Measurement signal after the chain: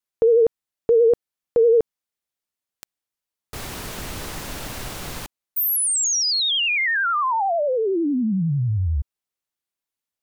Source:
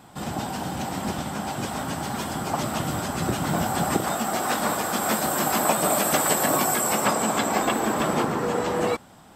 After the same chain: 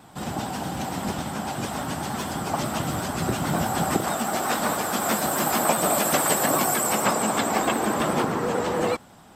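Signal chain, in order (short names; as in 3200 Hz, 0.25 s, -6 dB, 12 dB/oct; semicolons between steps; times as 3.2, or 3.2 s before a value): vibrato 11 Hz 64 cents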